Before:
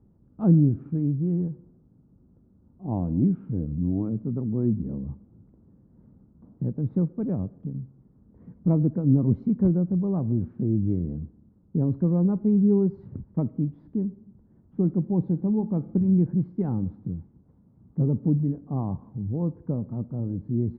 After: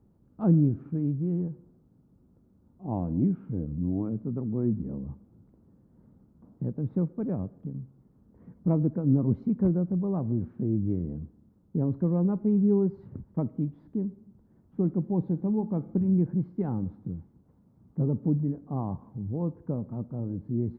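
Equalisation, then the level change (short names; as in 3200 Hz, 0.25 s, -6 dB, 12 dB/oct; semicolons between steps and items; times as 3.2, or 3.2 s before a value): low shelf 400 Hz -6 dB; +1.5 dB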